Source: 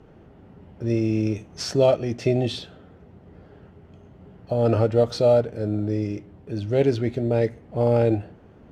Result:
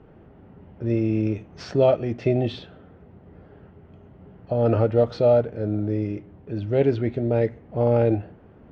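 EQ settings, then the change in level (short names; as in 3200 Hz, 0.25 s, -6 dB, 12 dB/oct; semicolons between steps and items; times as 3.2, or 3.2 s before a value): LPF 2800 Hz 12 dB/oct; 0.0 dB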